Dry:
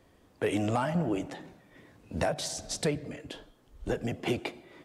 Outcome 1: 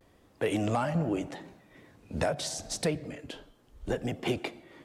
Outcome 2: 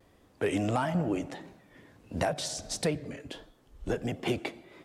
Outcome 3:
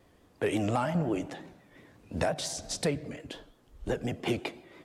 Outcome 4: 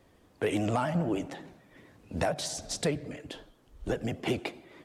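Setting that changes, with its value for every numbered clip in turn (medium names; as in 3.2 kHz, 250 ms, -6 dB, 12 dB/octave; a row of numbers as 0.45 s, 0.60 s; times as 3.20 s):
vibrato, rate: 0.79 Hz, 1.5 Hz, 5.7 Hz, 13 Hz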